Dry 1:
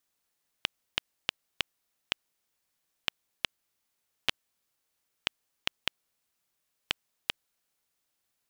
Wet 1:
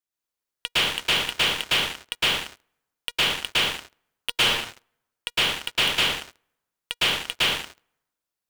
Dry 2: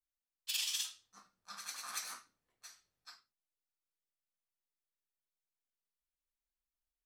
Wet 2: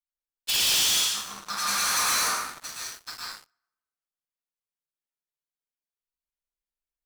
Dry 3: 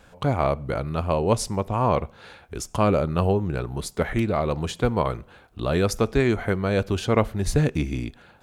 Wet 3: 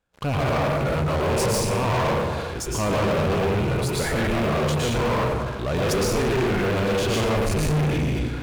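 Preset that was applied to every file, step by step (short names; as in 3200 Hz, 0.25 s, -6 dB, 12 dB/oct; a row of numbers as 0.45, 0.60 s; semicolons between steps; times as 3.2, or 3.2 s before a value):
rattling part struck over -24 dBFS, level -23 dBFS; transient shaper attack -3 dB, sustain +5 dB; resonator 480 Hz, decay 0.16 s, harmonics all, mix 40%; plate-style reverb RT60 1.1 s, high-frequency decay 0.65×, pre-delay 0.1 s, DRR -5 dB; sample leveller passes 5; match loudness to -23 LUFS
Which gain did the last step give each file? +0.5, +4.0, -12.5 dB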